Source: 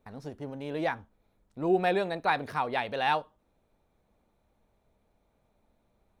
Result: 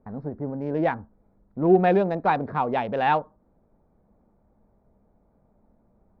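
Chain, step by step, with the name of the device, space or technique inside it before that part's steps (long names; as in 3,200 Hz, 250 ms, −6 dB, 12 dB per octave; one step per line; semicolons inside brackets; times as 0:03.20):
adaptive Wiener filter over 15 samples
phone in a pocket (low-pass filter 3,500 Hz 12 dB per octave; parametric band 200 Hz +5 dB 0.69 octaves; high-shelf EQ 2,200 Hz −10.5 dB)
0:01.93–0:02.94: dynamic equaliser 1,800 Hz, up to −5 dB, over −45 dBFS, Q 2
level +7.5 dB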